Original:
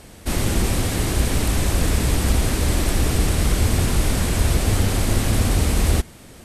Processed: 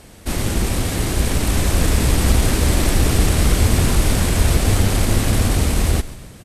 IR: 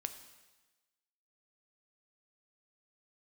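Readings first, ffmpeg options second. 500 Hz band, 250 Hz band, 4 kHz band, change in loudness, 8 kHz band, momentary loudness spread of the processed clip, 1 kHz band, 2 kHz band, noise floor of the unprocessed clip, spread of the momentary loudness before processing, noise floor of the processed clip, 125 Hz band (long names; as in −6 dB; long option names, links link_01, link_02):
+2.5 dB, +2.5 dB, +2.5 dB, +2.5 dB, +2.5 dB, 5 LU, +2.5 dB, +2.5 dB, −43 dBFS, 2 LU, −40 dBFS, +2.5 dB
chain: -filter_complex "[0:a]dynaudnorm=framelen=600:gausssize=5:maxgain=5dB,aeval=exprs='0.794*(cos(1*acos(clip(val(0)/0.794,-1,1)))-cos(1*PI/2))+0.0158*(cos(8*acos(clip(val(0)/0.794,-1,1)))-cos(8*PI/2))':channel_layout=same,asplit=6[link_01][link_02][link_03][link_04][link_05][link_06];[link_02]adelay=136,afreqshift=-57,volume=-16.5dB[link_07];[link_03]adelay=272,afreqshift=-114,volume=-22dB[link_08];[link_04]adelay=408,afreqshift=-171,volume=-27.5dB[link_09];[link_05]adelay=544,afreqshift=-228,volume=-33dB[link_10];[link_06]adelay=680,afreqshift=-285,volume=-38.6dB[link_11];[link_01][link_07][link_08][link_09][link_10][link_11]amix=inputs=6:normalize=0"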